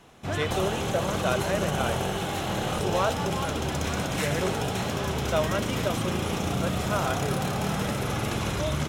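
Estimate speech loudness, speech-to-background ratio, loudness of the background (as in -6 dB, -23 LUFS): -32.0 LUFS, -3.5 dB, -28.5 LUFS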